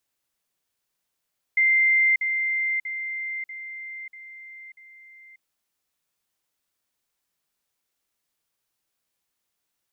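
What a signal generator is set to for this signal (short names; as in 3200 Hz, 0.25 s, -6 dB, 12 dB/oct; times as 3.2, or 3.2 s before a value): level ladder 2090 Hz -16 dBFS, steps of -6 dB, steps 6, 0.59 s 0.05 s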